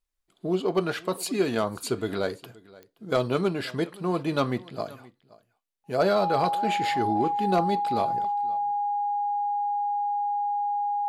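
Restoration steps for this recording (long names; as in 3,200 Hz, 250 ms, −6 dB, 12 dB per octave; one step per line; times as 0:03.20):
clipped peaks rebuilt −14 dBFS
click removal
notch filter 820 Hz, Q 30
echo removal 524 ms −22 dB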